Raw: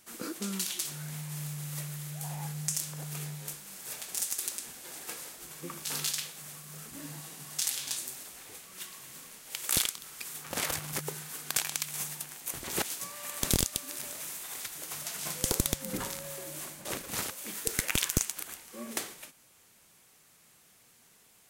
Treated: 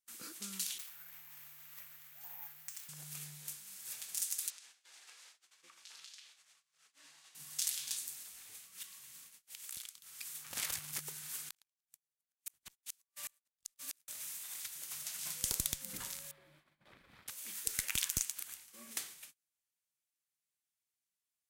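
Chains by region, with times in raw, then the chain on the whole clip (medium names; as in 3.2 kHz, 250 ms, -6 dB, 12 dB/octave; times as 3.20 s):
0.78–2.89 s: low-pass 9.2 kHz + three-band isolator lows -23 dB, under 530 Hz, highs -16 dB, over 2.8 kHz + careless resampling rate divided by 3×, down none, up zero stuff
4.50–7.35 s: band-pass 570–5300 Hz + compression 5:1, threshold -45 dBFS
8.83–10.15 s: compression 2.5:1, threshold -43 dBFS + expander -48 dBFS
11.23–14.08 s: compressor with a negative ratio -36 dBFS, ratio -0.5 + inverted gate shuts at -24 dBFS, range -33 dB
16.31–17.28 s: band-stop 2.8 kHz, Q 11 + compression 4:1, threshold -40 dBFS + distance through air 430 m
whole clip: gate -50 dBFS, range -25 dB; amplifier tone stack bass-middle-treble 5-5-5; trim +1.5 dB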